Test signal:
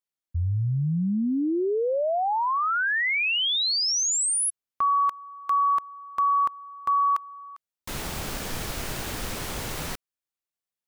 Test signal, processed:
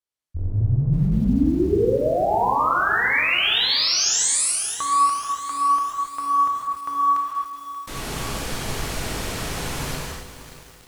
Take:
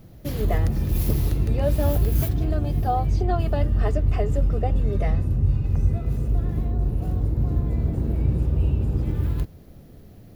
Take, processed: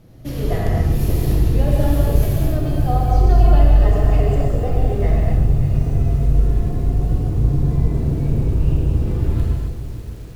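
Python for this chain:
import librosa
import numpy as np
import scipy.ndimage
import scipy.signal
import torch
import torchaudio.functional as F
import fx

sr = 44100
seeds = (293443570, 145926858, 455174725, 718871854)

p1 = fx.octave_divider(x, sr, octaves=2, level_db=-5.0)
p2 = scipy.signal.sosfilt(scipy.signal.butter(2, 12000.0, 'lowpass', fs=sr, output='sos'), p1)
p3 = p2 + fx.echo_feedback(p2, sr, ms=141, feedback_pct=58, wet_db=-14.0, dry=0)
p4 = fx.rev_gated(p3, sr, seeds[0], gate_ms=300, shape='flat', drr_db=-4.0)
p5 = fx.echo_crushed(p4, sr, ms=582, feedback_pct=55, bits=6, wet_db=-13.0)
y = F.gain(torch.from_numpy(p5), -1.5).numpy()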